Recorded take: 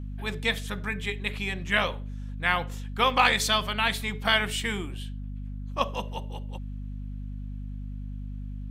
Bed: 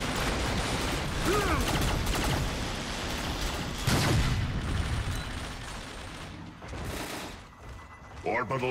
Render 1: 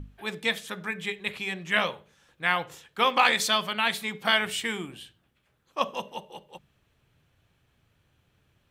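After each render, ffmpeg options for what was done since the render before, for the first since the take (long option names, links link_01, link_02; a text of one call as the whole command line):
ffmpeg -i in.wav -af "bandreject=frequency=50:width_type=h:width=6,bandreject=frequency=100:width_type=h:width=6,bandreject=frequency=150:width_type=h:width=6,bandreject=frequency=200:width_type=h:width=6,bandreject=frequency=250:width_type=h:width=6" out.wav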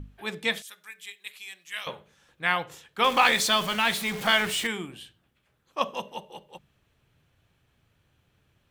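ffmpeg -i in.wav -filter_complex "[0:a]asettb=1/sr,asplit=3[link_01][link_02][link_03];[link_01]atrim=end=0.624[link_04];[link_02]atrim=start=0.62:end=1.87,asetpts=PTS-STARTPTS,afade=type=in:duration=0.004:curve=qsin,afade=type=out:start_time=1.246:duration=0.004:curve=qsin,aderivative[link_05];[link_03]atrim=start=1.866[link_06];[link_04][link_05]acrossfade=duration=0.004:curve1=hsin:curve2=qsin[link_07];[link_07][link_06]acrossfade=duration=0.004:curve1=qsin:curve2=hsin,asettb=1/sr,asplit=3[link_08][link_09][link_10];[link_08]atrim=end=3.044[link_11];[link_09]atrim=start=3.04:end=4.67,asetpts=PTS-STARTPTS,afade=type=in:duration=0.004:curve=qsin,afade=type=out:start_time=1.626:duration=0.004:curve=qsin,aeval=exprs='val(0)+0.5*0.0266*sgn(val(0))':channel_layout=same[link_12];[link_10]atrim=start=4.666[link_13];[link_11][link_12]acrossfade=duration=0.004:curve1=hsin:curve2=qsin[link_14];[link_14][link_13]acrossfade=duration=0.004:curve1=qsin:curve2=hsin" out.wav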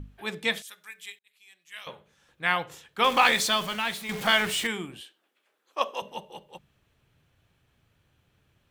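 ffmpeg -i in.wav -filter_complex "[0:a]asettb=1/sr,asplit=3[link_01][link_02][link_03];[link_01]atrim=end=5.014[link_04];[link_02]atrim=start=5.01:end=6.02,asetpts=PTS-STARTPTS,afade=type=in:duration=0.004:curve=qsin,afade=type=out:start_time=1.006:duration=0.004:curve=qsin,highpass=frequency=320:width=0.5412,highpass=frequency=320:width=1.3066[link_05];[link_03]atrim=start=6.016[link_06];[link_04][link_05]acrossfade=duration=0.004:curve1=hsin:curve2=qsin[link_07];[link_07][link_06]acrossfade=duration=0.004:curve1=qsin:curve2=hsin,asplit=3[link_08][link_09][link_10];[link_08]atrim=end=1.19,asetpts=PTS-STARTPTS,afade=type=out:start_time=1.186:duration=0.004:curve=hsin[link_11];[link_09]atrim=start=1.19:end=4.09,asetpts=PTS-STARTPTS,afade=type=in:duration=1.33,afade=type=out:start_time=2.09:duration=0.81:silence=0.375837[link_12];[link_10]atrim=start=4.09,asetpts=PTS-STARTPTS,afade=type=in:duration=0.004:curve=hsin:silence=0.375837[link_13];[link_11][link_12][link_13]concat=n=3:v=0:a=1" out.wav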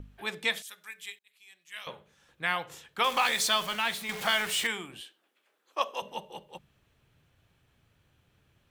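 ffmpeg -i in.wav -filter_complex "[0:a]acrossover=split=500|4700[link_01][link_02][link_03];[link_01]acompressor=threshold=-43dB:ratio=6[link_04];[link_02]alimiter=limit=-15.5dB:level=0:latency=1:release=301[link_05];[link_04][link_05][link_03]amix=inputs=3:normalize=0" out.wav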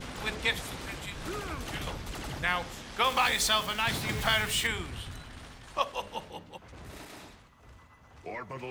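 ffmpeg -i in.wav -i bed.wav -filter_complex "[1:a]volume=-10dB[link_01];[0:a][link_01]amix=inputs=2:normalize=0" out.wav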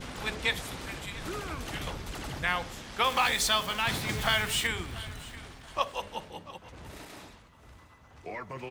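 ffmpeg -i in.wav -af "aecho=1:1:688|1376:0.119|0.0309" out.wav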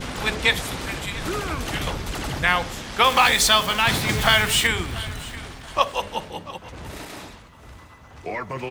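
ffmpeg -i in.wav -af "volume=9.5dB" out.wav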